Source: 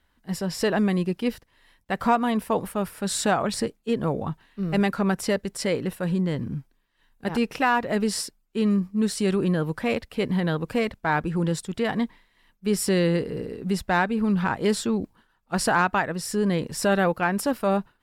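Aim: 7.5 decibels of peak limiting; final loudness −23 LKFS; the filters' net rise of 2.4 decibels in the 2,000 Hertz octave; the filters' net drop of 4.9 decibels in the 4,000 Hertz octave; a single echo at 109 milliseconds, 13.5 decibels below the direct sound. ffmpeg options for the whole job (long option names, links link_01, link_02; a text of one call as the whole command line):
ffmpeg -i in.wav -af "equalizer=frequency=2000:width_type=o:gain=5,equalizer=frequency=4000:width_type=o:gain=-9,alimiter=limit=-16dB:level=0:latency=1,aecho=1:1:109:0.211,volume=4dB" out.wav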